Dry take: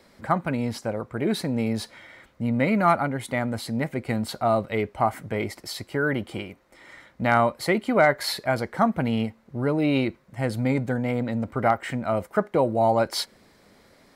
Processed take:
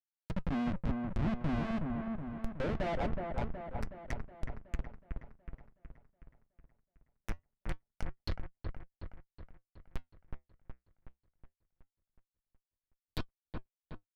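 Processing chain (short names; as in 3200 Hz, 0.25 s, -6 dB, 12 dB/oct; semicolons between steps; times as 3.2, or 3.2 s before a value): in parallel at +2.5 dB: compressor 4:1, threshold -36 dBFS, peak gain reduction 18.5 dB; on the sum: band-pass sweep 220 Hz -> 3500 Hz, 1.67–4.97; whine 7800 Hz -51 dBFS; envelope phaser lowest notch 240 Hz, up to 3600 Hz, full sweep at -25 dBFS; Schmitt trigger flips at -26.5 dBFS; low shelf 220 Hz +4.5 dB; treble ducked by the level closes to 2600 Hz, closed at -34.5 dBFS; on a send: dark delay 0.37 s, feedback 55%, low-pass 1800 Hz, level -4 dB; on the sum: flange 0.23 Hz, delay 2.5 ms, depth 5.6 ms, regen -75%; gain +4.5 dB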